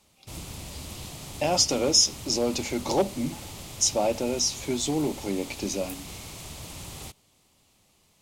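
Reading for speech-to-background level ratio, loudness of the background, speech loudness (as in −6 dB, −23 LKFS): 14.0 dB, −39.5 LKFS, −25.5 LKFS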